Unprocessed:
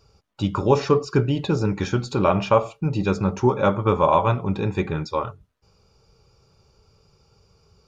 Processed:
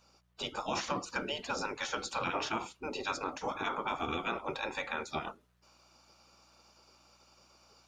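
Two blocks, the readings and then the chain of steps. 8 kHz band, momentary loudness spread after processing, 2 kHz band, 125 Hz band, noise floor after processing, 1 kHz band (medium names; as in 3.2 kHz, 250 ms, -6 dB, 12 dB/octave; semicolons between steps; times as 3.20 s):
no reading, 5 LU, -3.5 dB, -27.5 dB, -69 dBFS, -12.0 dB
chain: spectral gate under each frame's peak -15 dB weak; bass shelf 100 Hz -9 dB; gain riding 2 s; peak limiter -23 dBFS, peak gain reduction 9 dB; mains buzz 60 Hz, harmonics 3, -73 dBFS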